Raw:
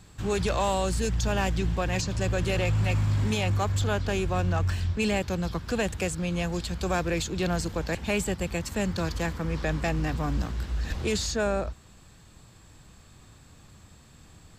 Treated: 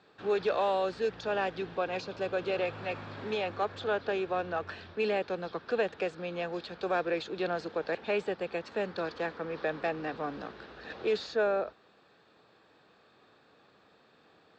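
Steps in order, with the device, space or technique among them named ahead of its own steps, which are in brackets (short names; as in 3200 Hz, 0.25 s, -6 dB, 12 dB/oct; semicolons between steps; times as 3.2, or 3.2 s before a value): phone earpiece (speaker cabinet 420–3600 Hz, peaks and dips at 440 Hz +5 dB, 1000 Hz -5 dB, 2100 Hz -7 dB, 3000 Hz -7 dB); 1.77–2.61 notch 1800 Hz, Q 8.4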